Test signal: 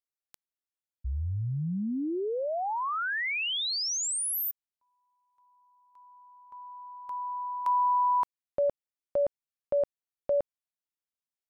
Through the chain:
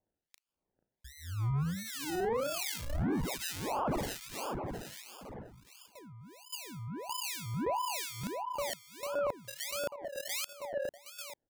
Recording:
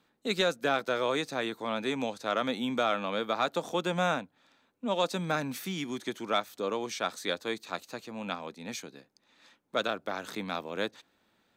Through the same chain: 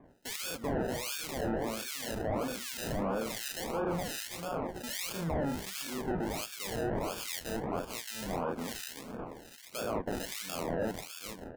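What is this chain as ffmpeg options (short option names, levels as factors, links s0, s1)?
-filter_complex "[0:a]asplit=2[s0][s1];[s1]adelay=36,volume=0.596[s2];[s0][s2]amix=inputs=2:normalize=0,aecho=1:1:446|892|1338|1784:0.178|0.0854|0.041|0.0197,aresample=16000,asoftclip=type=tanh:threshold=0.0531,aresample=44100,acontrast=39,lowshelf=f=82:g=-10,acrusher=samples=31:mix=1:aa=0.000001:lfo=1:lforange=18.6:lforate=1.5,bass=f=250:g=0,treble=f=4000:g=5,areverse,acompressor=threshold=0.0178:ratio=12:attack=3.2:release=29:knee=6:detection=peak,areverse,acrossover=split=1700[s3][s4];[s3]aeval=exprs='val(0)*(1-1/2+1/2*cos(2*PI*1.3*n/s))':c=same[s5];[s4]aeval=exprs='val(0)*(1-1/2-1/2*cos(2*PI*1.3*n/s))':c=same[s6];[s5][s6]amix=inputs=2:normalize=0,volume=2.11"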